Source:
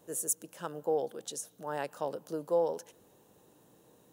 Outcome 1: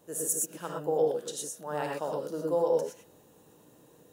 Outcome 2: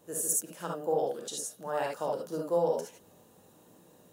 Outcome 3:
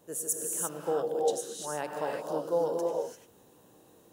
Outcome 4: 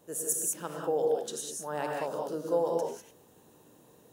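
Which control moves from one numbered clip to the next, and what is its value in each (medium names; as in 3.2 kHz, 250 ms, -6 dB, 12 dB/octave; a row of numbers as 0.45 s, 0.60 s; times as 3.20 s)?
gated-style reverb, gate: 140 ms, 90 ms, 370 ms, 220 ms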